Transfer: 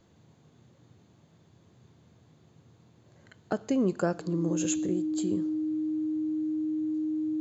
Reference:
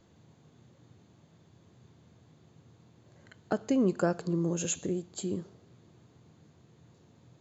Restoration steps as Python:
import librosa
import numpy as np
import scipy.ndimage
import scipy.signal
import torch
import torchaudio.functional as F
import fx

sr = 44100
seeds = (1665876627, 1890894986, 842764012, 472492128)

y = fx.notch(x, sr, hz=310.0, q=30.0)